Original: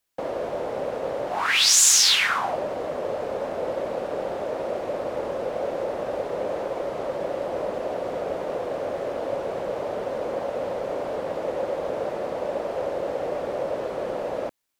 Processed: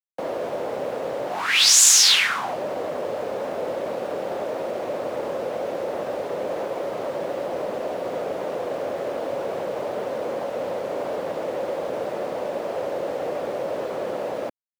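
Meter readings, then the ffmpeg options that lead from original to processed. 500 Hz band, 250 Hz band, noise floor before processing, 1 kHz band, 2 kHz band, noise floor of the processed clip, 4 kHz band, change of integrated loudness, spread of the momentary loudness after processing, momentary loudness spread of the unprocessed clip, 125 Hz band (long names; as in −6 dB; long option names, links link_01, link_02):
+0.5 dB, +1.0 dB, −33 dBFS, 0.0 dB, +1.5 dB, −31 dBFS, +2.5 dB, +2.0 dB, 12 LU, 11 LU, −0.5 dB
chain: -filter_complex "[0:a]highpass=95,lowshelf=frequency=150:gain=-3.5,acrossover=split=350|1800|2100[link_01][link_02][link_03][link_04];[link_02]alimiter=level_in=0.5dB:limit=-24dB:level=0:latency=1,volume=-0.5dB[link_05];[link_01][link_05][link_03][link_04]amix=inputs=4:normalize=0,acrusher=bits=8:mix=0:aa=0.5,volume=2.5dB"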